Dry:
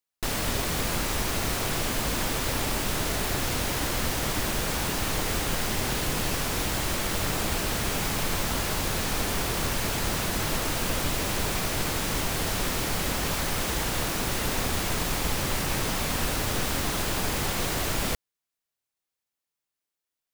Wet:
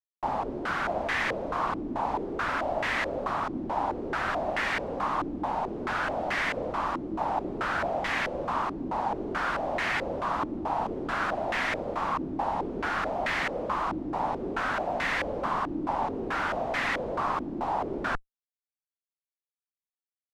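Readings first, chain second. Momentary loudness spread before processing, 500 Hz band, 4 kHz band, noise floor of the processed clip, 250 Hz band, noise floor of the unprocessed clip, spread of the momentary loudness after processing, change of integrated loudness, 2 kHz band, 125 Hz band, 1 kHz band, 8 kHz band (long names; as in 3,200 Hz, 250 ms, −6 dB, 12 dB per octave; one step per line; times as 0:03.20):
0 LU, +1.0 dB, −11.0 dB, below −85 dBFS, −2.0 dB, below −85 dBFS, 3 LU, −2.5 dB, +1.0 dB, −11.5 dB, +4.5 dB, −22.5 dB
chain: spectral tilt +3 dB per octave
in parallel at 0 dB: brickwall limiter −19.5 dBFS, peak gain reduction 9.5 dB
on the sum: phaser with its sweep stopped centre 450 Hz, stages 6
comparator with hysteresis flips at −37.5 dBFS
low-pass on a step sequencer 4.6 Hz 310–1,900 Hz
level −2.5 dB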